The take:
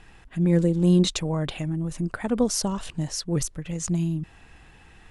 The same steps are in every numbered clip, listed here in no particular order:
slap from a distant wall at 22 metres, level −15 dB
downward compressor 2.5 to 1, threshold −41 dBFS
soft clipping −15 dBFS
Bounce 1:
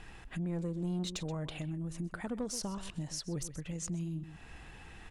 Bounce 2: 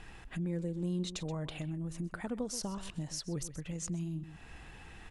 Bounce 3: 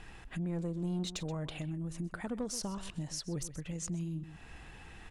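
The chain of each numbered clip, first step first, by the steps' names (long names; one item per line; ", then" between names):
slap from a distant wall, then soft clipping, then downward compressor
slap from a distant wall, then downward compressor, then soft clipping
soft clipping, then slap from a distant wall, then downward compressor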